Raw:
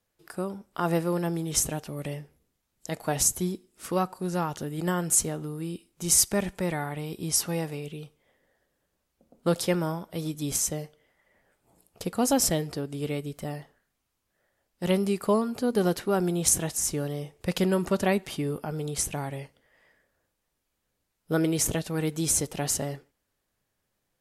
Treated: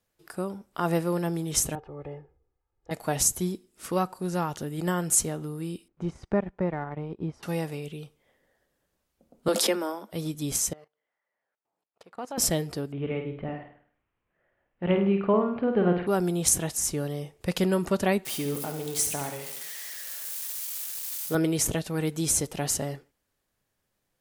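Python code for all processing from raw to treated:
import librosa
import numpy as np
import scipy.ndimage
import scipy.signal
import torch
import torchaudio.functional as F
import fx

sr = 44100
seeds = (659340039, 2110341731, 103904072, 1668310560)

y = fx.chain(x, sr, fx.lowpass(hz=1000.0, slope=12),
    fx.peak_eq(hz=220.0, db=-8.5, octaves=1.7),
    fx.comb(ms=2.4, depth=0.71), at=(1.75, 2.91))
y = fx.chain(y, sr, fx.lowpass(hz=1400.0, slope=12),
    fx.transient(attack_db=3, sustain_db=-11), at=(5.88, 7.43))
y = fx.chain(y, sr, fx.steep_highpass(hz=200.0, slope=96),
    fx.pre_swell(db_per_s=31.0), at=(9.48, 10.12))
y = fx.chain(y, sr, fx.law_mismatch(coded='A'),
    fx.bandpass_q(hz=1100.0, q=0.87),
    fx.level_steps(step_db=17), at=(10.73, 12.38))
y = fx.chain(y, sr, fx.steep_lowpass(hz=2800.0, slope=36),
    fx.room_flutter(wall_m=8.7, rt60_s=0.52), at=(12.92, 16.07))
y = fx.chain(y, sr, fx.crossing_spikes(level_db=-28.5),
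    fx.highpass(hz=200.0, slope=6),
    fx.echo_feedback(ms=70, feedback_pct=55, wet_db=-8.5), at=(18.25, 21.35))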